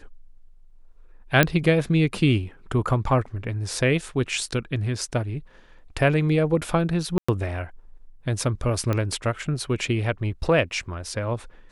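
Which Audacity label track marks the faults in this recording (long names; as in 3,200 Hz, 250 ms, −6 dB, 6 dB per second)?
1.430000	1.430000	click −3 dBFS
7.180000	7.290000	drop-out 105 ms
8.930000	8.930000	click −13 dBFS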